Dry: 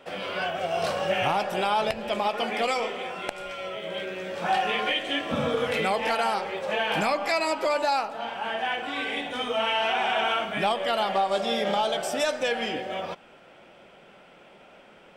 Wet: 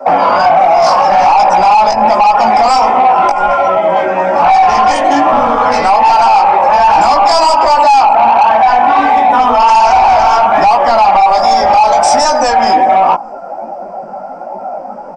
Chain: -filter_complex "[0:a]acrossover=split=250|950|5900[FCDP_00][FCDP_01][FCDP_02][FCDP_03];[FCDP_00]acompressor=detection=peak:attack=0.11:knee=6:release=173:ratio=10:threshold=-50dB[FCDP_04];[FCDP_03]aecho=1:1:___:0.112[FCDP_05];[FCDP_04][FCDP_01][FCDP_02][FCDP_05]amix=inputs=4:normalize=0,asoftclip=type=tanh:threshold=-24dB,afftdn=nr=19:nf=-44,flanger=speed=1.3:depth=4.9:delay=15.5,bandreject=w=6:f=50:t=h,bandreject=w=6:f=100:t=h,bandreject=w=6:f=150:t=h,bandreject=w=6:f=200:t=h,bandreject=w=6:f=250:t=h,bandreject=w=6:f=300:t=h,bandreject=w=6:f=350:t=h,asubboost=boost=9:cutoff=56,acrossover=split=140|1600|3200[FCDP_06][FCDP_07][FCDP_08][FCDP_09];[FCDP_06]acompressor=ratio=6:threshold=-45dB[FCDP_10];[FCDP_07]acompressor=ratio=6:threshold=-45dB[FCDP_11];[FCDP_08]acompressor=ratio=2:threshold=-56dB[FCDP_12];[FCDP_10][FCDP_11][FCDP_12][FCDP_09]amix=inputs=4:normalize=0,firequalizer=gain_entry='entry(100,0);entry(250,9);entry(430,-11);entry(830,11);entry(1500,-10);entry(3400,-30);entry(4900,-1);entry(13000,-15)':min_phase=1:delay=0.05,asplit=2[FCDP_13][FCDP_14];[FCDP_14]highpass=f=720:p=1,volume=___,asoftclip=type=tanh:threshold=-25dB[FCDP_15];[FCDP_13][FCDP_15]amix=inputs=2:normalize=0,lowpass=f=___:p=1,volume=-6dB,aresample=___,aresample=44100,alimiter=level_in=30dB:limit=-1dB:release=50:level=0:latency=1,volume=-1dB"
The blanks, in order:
615, 18dB, 3500, 22050